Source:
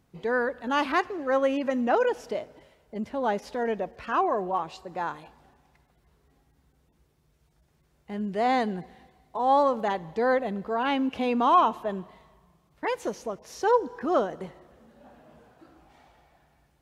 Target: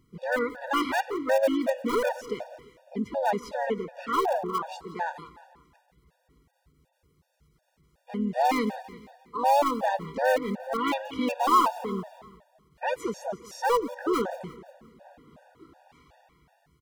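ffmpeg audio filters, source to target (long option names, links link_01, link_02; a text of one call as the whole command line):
ffmpeg -i in.wav -filter_complex "[0:a]asplit=2[link_01][link_02];[link_02]aeval=exprs='(mod(7.94*val(0)+1,2)-1)/7.94':channel_layout=same,volume=-12dB[link_03];[link_01][link_03]amix=inputs=2:normalize=0,aecho=1:1:174|348|522|696:0.158|0.0745|0.035|0.0165,asplit=2[link_04][link_05];[link_05]asetrate=52444,aresample=44100,atempo=0.840896,volume=-7dB[link_06];[link_04][link_06]amix=inputs=2:normalize=0,afftfilt=real='re*gt(sin(2*PI*2.7*pts/sr)*(1-2*mod(floor(b*sr/1024/480),2)),0)':imag='im*gt(sin(2*PI*2.7*pts/sr)*(1-2*mod(floor(b*sr/1024/480),2)),0)':win_size=1024:overlap=0.75" out.wav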